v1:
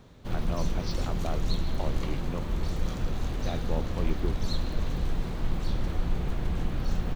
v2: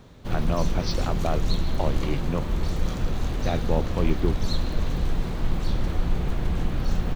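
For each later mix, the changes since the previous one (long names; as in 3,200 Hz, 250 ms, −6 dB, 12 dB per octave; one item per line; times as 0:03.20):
speech +8.0 dB
background +4.0 dB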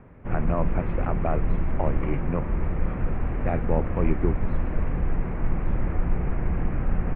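master: add Butterworth low-pass 2,400 Hz 48 dB per octave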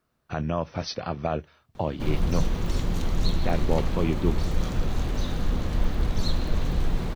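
background: entry +1.75 s
master: remove Butterworth low-pass 2,400 Hz 48 dB per octave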